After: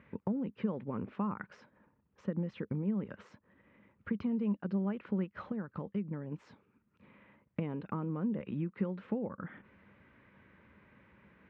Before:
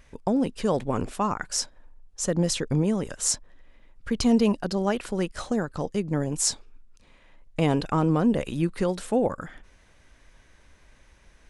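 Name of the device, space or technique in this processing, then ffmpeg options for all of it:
bass amplifier: -filter_complex "[0:a]acompressor=threshold=0.0178:ratio=6,highpass=f=89:w=0.5412,highpass=f=89:w=1.3066,equalizer=f=200:t=q:w=4:g=9,equalizer=f=710:t=q:w=4:g=-9,equalizer=f=1700:t=q:w=4:g=-3,lowpass=f=2300:w=0.5412,lowpass=f=2300:w=1.3066,asettb=1/sr,asplit=3[s0][s1][s2];[s0]atrim=end=5.244[s3];[s1]atrim=start=5.24:end=6.32,asetpts=PTS-STARTPTS,afade=t=in:d=0.004:c=qsin,afade=t=out:st=1.076:d=0.004:c=qsin,equalizer=f=280:w=0.53:g=-3.5[s4];[s2]atrim=start=6.316[s5];[s3][s4]acrossfade=d=0.004:c1=hsin:c2=qsin[s6];[s6][s5]acrossfade=d=0.004:c1=qsin:c2=hsin"

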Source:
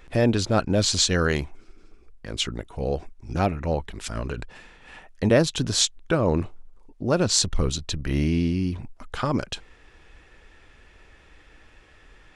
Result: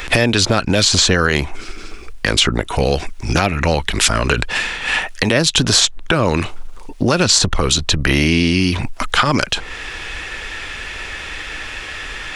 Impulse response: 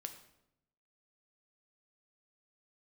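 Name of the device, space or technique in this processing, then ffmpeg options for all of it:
mastering chain: -filter_complex "[0:a]equalizer=f=2800:t=o:w=1.6:g=2.5,acrossover=split=320|1400[s0][s1][s2];[s0]acompressor=threshold=0.0355:ratio=4[s3];[s1]acompressor=threshold=0.0224:ratio=4[s4];[s2]acompressor=threshold=0.0112:ratio=4[s5];[s3][s4][s5]amix=inputs=3:normalize=0,acompressor=threshold=0.02:ratio=2,tiltshelf=f=910:g=-5.5,alimiter=level_in=15.8:limit=0.891:release=50:level=0:latency=1,volume=0.891"

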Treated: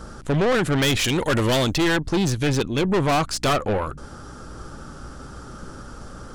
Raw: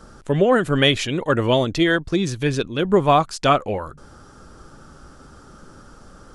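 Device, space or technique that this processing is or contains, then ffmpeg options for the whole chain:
valve amplifier with mains hum: -filter_complex "[0:a]asettb=1/sr,asplit=3[s0][s1][s2];[s0]atrim=end=1.044[s3];[s1]atrim=start=1.04:end=1.75,asetpts=PTS-STARTPTS,afade=t=in:d=0.004:c=qsin,afade=t=out:st=0.706:d=0.004:c=qsin,aemphasis=mode=production:type=75kf[s4];[s2]atrim=start=1.746[s5];[s3][s4]acrossfade=d=0.004:c1=hsin:c2=qsin[s6];[s6][s5]acrossfade=d=0.004:c1=qsin:c2=hsin,aeval=exprs='(tanh(15.8*val(0)+0.3)-tanh(0.3))/15.8':c=same,aeval=exprs='val(0)+0.00316*(sin(2*PI*60*n/s)+sin(2*PI*2*60*n/s)/2+sin(2*PI*3*60*n/s)/3+sin(2*PI*4*60*n/s)/4+sin(2*PI*5*60*n/s)/5)':c=same,volume=2.11"

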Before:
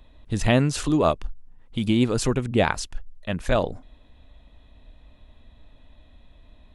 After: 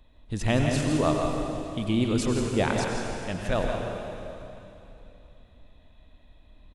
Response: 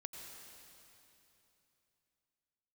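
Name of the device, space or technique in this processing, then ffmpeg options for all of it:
cave: -filter_complex "[0:a]aecho=1:1:167:0.355[s0];[1:a]atrim=start_sample=2205[s1];[s0][s1]afir=irnorm=-1:irlink=0"

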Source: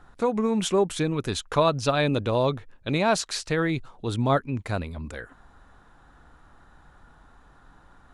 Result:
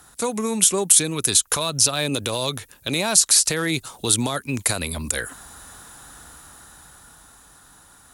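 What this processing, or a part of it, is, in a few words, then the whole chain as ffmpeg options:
FM broadcast chain: -filter_complex "[0:a]highpass=51,dynaudnorm=f=220:g=17:m=3.76,acrossover=split=240|1400[s0][s1][s2];[s0]acompressor=threshold=0.0355:ratio=4[s3];[s1]acompressor=threshold=0.0794:ratio=4[s4];[s2]acompressor=threshold=0.0316:ratio=4[s5];[s3][s4][s5]amix=inputs=3:normalize=0,aemphasis=mode=production:type=75fm,alimiter=limit=0.178:level=0:latency=1:release=74,asoftclip=type=hard:threshold=0.158,lowpass=f=15000:w=0.5412,lowpass=f=15000:w=1.3066,aemphasis=mode=production:type=75fm,volume=1.19"

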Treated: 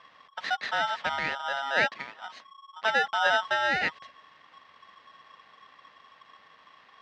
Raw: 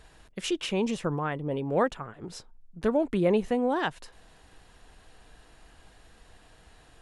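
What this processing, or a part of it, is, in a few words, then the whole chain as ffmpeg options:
ring modulator pedal into a guitar cabinet: -filter_complex "[0:a]aeval=exprs='val(0)*sgn(sin(2*PI*1100*n/s))':c=same,highpass=99,equalizer=f=120:t=q:w=4:g=-6,equalizer=f=360:t=q:w=4:g=-8,equalizer=f=800:t=q:w=4:g=3,equalizer=f=1900:t=q:w=4:g=8,lowpass=f=4400:w=0.5412,lowpass=f=4400:w=1.3066,asettb=1/sr,asplit=3[s0][s1][s2];[s0]atrim=end=1.514[s3];[s1]atrim=start=1.51:end=3.11,asetpts=PTS-STARTPTS,afade=t=in:d=0.004:c=qsin,afade=t=out:st=1.596:d=0.004:c=qsin,highpass=160[s4];[s2]atrim=start=3.106[s5];[s3][s4]acrossfade=d=0.004:c1=hsin:c2=qsin[s6];[s6][s5]acrossfade=d=0.004:c1=qsin:c2=hsin,volume=0.794"

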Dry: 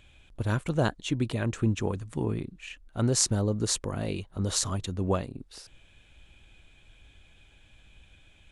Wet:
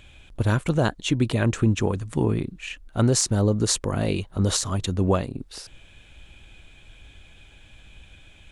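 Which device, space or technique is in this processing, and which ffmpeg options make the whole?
clipper into limiter: -af "asoftclip=type=hard:threshold=0.299,alimiter=limit=0.126:level=0:latency=1:release=228,volume=2.37"

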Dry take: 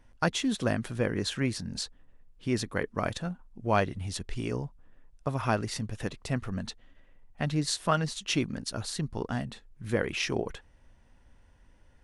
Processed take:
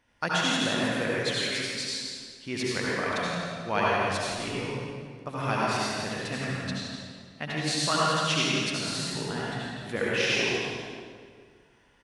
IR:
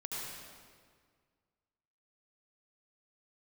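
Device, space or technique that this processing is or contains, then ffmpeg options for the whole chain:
PA in a hall: -filter_complex "[0:a]asettb=1/sr,asplit=3[s0][s1][s2];[s0]atrim=end=1.104[s3];[s1]atrim=start=1.1:end=1.76,asetpts=PTS-STARTPTS,afade=t=in:d=0.004:c=qsin,afade=t=out:st=0.656:d=0.004:c=qsin,highpass=f=640:p=1[s4];[s2]atrim=start=1.756[s5];[s3][s4]acrossfade=d=0.004:c1=hsin:c2=qsin[s6];[s6][s5]acrossfade=d=0.004:c1=qsin:c2=hsin,highpass=f=190:p=1,equalizer=f=2800:t=o:w=2.2:g=7,aecho=1:1:170:0.398[s7];[1:a]atrim=start_sample=2205[s8];[s7][s8]afir=irnorm=-1:irlink=0"

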